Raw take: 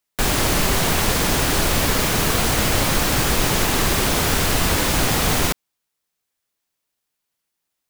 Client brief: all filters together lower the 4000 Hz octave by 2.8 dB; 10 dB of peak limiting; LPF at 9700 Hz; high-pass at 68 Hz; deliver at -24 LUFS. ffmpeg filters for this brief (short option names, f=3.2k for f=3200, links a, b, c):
-af "highpass=68,lowpass=9.7k,equalizer=f=4k:t=o:g=-3.5,volume=2dB,alimiter=limit=-15.5dB:level=0:latency=1"